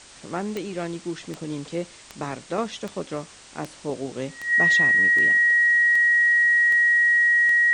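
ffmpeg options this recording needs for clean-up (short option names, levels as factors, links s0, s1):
-af "adeclick=t=4,bandreject=f=47.5:t=h:w=4,bandreject=f=95:t=h:w=4,bandreject=f=142.5:t=h:w=4,bandreject=f=1900:w=30,afwtdn=0.0063"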